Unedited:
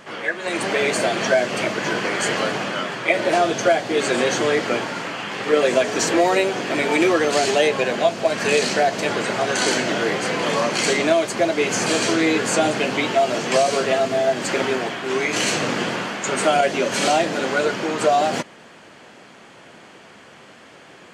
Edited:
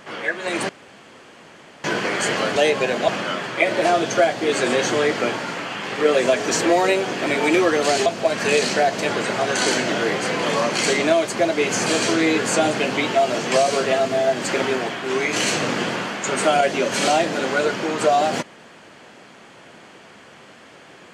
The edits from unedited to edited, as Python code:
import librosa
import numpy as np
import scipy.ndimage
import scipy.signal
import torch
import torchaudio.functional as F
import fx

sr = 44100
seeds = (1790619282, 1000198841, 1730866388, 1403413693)

y = fx.edit(x, sr, fx.room_tone_fill(start_s=0.69, length_s=1.15),
    fx.move(start_s=7.54, length_s=0.52, to_s=2.56), tone=tone)